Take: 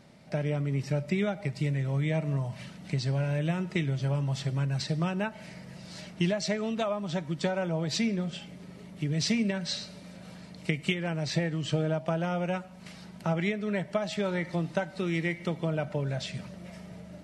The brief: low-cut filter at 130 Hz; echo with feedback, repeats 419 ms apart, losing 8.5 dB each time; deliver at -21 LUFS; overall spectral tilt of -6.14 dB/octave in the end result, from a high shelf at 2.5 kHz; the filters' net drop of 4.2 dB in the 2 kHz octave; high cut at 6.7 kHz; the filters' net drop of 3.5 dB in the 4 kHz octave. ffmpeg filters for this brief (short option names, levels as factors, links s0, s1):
-af "highpass=130,lowpass=6700,equalizer=f=2000:t=o:g=-6,highshelf=f=2500:g=6.5,equalizer=f=4000:t=o:g=-8,aecho=1:1:419|838|1257|1676:0.376|0.143|0.0543|0.0206,volume=3.55"